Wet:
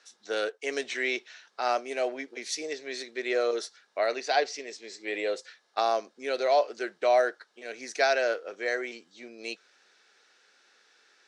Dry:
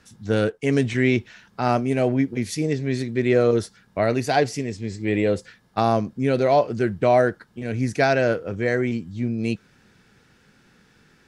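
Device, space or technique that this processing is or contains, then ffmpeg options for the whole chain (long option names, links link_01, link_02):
phone speaker on a table: -filter_complex "[0:a]asettb=1/sr,asplit=3[link_01][link_02][link_03];[link_01]atrim=end=4.154[link_04];[link_02]atrim=start=4.15:end=4.67,asetpts=PTS-STARTPTS,afade=type=in:duration=0.004:curve=qsin,afade=type=out:start_time=0.516:duration=0.004:curve=qsin,lowpass=5200[link_05];[link_03]atrim=start=4.666[link_06];[link_04][link_05]acrossfade=duration=0.004:curve1=hsin:curve2=qsin[link_07];[link_07][link_06]acrossfade=duration=0.004:curve1=qsin:curve2=hsin,highpass=frequency=450:width=0.5412,highpass=frequency=450:width=1.3066,equalizer=frequency=490:width_type=q:width=4:gain=-3,equalizer=frequency=950:width_type=q:width=4:gain=-4,equalizer=frequency=4000:width_type=q:width=4:gain=6,equalizer=frequency=5800:width_type=q:width=4:gain=5,lowpass=frequency=8800:width=0.5412,lowpass=frequency=8800:width=1.3066,volume=-3.5dB"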